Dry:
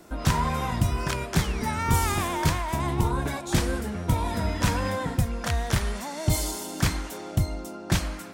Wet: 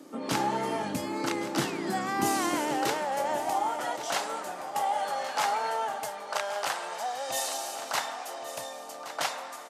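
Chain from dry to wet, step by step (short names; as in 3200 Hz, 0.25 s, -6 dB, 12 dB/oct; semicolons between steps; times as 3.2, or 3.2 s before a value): HPF 110 Hz 24 dB/oct; varispeed -14%; high-pass sweep 290 Hz -> 730 Hz, 2.38–3.67; feedback echo 1.121 s, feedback 31%, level -13 dB; gain -2.5 dB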